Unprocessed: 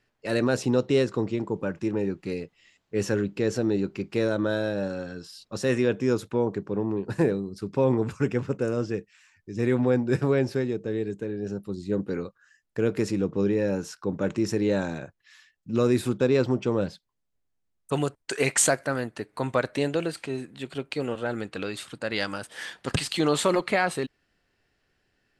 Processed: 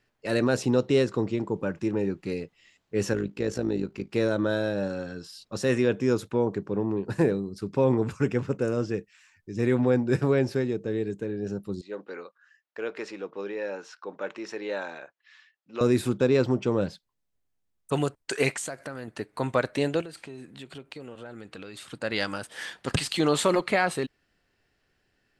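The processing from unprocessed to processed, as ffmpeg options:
-filter_complex "[0:a]asettb=1/sr,asplit=3[s0][s1][s2];[s0]atrim=end=3.134[s3];[s1]atrim=start=3.13:end=4.14,asetpts=PTS-STARTPTS,afade=t=in:d=0.004:c=qsin,afade=t=out:st=1.006:d=0.004:c=qsin,tremolo=f=54:d=0.667[s4];[s2]atrim=start=4.136[s5];[s3][s4]acrossfade=d=0.004:c1=hsin:c2=qsin[s6];[s6][s5]acrossfade=d=0.004:c1=qsin:c2=hsin,asettb=1/sr,asplit=3[s7][s8][s9];[s7]atrim=end=11.814[s10];[s8]atrim=start=11.81:end=15.81,asetpts=PTS-STARTPTS,afade=t=in:d=0.004:c=qsin,afade=t=out:st=3.996:d=0.004:c=qsin,highpass=640,lowpass=3800[s11];[s9]atrim=start=15.806[s12];[s10][s11]acrossfade=d=0.004:c1=hsin:c2=qsin[s13];[s13][s12]acrossfade=d=0.004:c1=qsin:c2=hsin,asettb=1/sr,asplit=3[s14][s15][s16];[s14]atrim=end=18.554[s17];[s15]atrim=start=18.55:end=19.08,asetpts=PTS-STARTPTS,afade=t=in:d=0.004:c=qsin,afade=t=out:st=0.526:d=0.004:c=qsin,acompressor=threshold=0.0224:ratio=4:attack=3.2:release=140:knee=1:detection=peak[s18];[s16]atrim=start=19.076[s19];[s17][s18]acrossfade=d=0.004:c1=hsin:c2=qsin[s20];[s20][s19]acrossfade=d=0.004:c1=qsin:c2=hsin,asettb=1/sr,asplit=3[s21][s22][s23];[s21]atrim=end=20.014[s24];[s22]atrim=start=20.01:end=21.92,asetpts=PTS-STARTPTS,afade=t=in:d=0.004:c=qsin,afade=t=out:st=1.906:d=0.004:c=qsin,acompressor=threshold=0.0112:ratio=4:attack=3.2:release=140:knee=1:detection=peak[s25];[s23]atrim=start=21.916[s26];[s24][s25]acrossfade=d=0.004:c1=hsin:c2=qsin[s27];[s27][s26]acrossfade=d=0.004:c1=qsin:c2=hsin"

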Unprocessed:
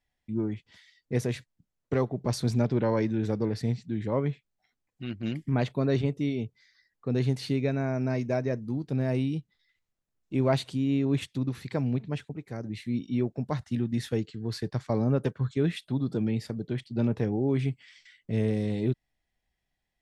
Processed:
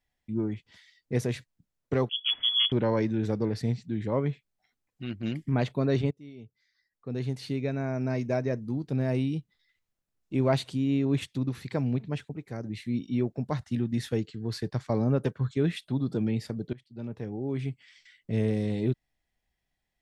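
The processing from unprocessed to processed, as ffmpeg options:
-filter_complex "[0:a]asettb=1/sr,asplit=3[s0][s1][s2];[s0]atrim=end=2.094[s3];[s1]atrim=start=2.09:end=2.72,asetpts=PTS-STARTPTS,afade=t=in:d=0.004:c=qsin,afade=t=out:st=0.626:d=0.004:c=qsin,lowpass=f=3000:t=q:w=0.5098,lowpass=f=3000:t=q:w=0.6013,lowpass=f=3000:t=q:w=0.9,lowpass=f=3000:t=q:w=2.563,afreqshift=-3500[s4];[s2]atrim=start=2.716[s5];[s3][s4]acrossfade=d=0.004:c1=hsin:c2=qsin[s6];[s6][s5]acrossfade=d=0.004:c1=qsin:c2=hsin,asplit=3[s7][s8][s9];[s7]atrim=end=6.11,asetpts=PTS-STARTPTS,afade=t=out:st=6.106:d=0.004:c=hsin:silence=0.0707946[s10];[s8]atrim=start=6.11:end=16.73,asetpts=PTS-STARTPTS,afade=t=in:d=2.22:silence=0.0707946,afade=t=out:st=10.616:d=0.004:c=hsin:silence=0.1[s11];[s9]atrim=start=16.73,asetpts=PTS-STARTPTS,afade=t=in:d=1.6:silence=0.1[s12];[s10][s11][s12]concat=n=3:v=0:a=1"

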